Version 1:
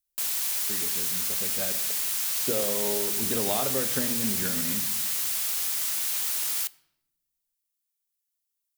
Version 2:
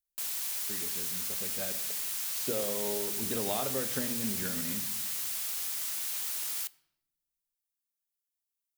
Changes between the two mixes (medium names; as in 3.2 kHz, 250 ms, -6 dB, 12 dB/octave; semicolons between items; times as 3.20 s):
speech -4.5 dB; background -6.5 dB